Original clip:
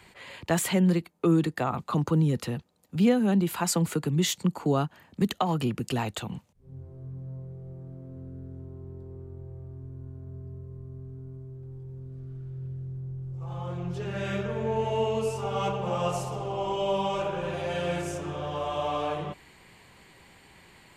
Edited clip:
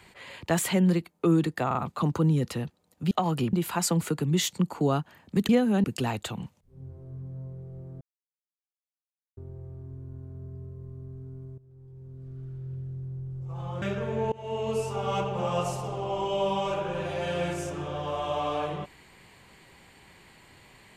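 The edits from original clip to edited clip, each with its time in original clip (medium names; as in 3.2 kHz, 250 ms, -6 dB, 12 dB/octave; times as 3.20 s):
1.67 s: stutter 0.04 s, 3 plays
3.03–3.38 s: swap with 5.34–5.76 s
7.93–9.29 s: mute
11.50–12.32 s: fade in, from -17 dB
13.74–14.30 s: delete
14.80–15.24 s: fade in linear, from -23.5 dB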